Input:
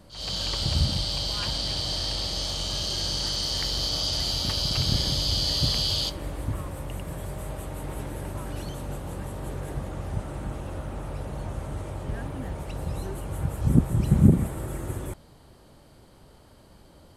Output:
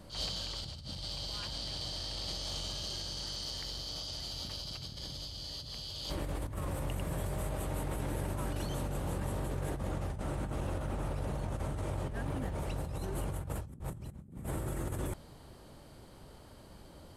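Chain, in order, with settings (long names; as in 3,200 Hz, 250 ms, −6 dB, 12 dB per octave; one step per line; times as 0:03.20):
compressor whose output falls as the input rises −34 dBFS, ratio −1
level −5 dB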